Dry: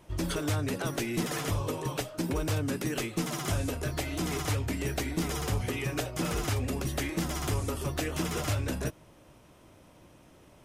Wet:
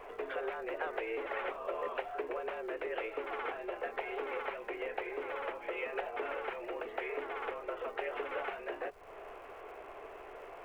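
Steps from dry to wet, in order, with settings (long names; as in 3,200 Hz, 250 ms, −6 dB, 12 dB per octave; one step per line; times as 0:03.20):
downward compressor 12 to 1, threshold −42 dBFS, peak gain reduction 17 dB
single-sideband voice off tune +100 Hz 300–2,500 Hz
surface crackle 450 per second −69 dBFS
background noise brown −76 dBFS
level +11 dB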